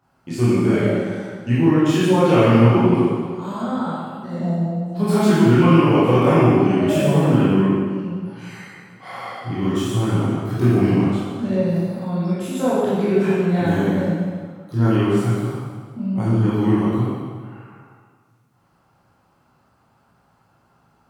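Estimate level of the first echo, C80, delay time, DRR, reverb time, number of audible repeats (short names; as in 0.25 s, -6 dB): none, -1.0 dB, none, -10.5 dB, 1.7 s, none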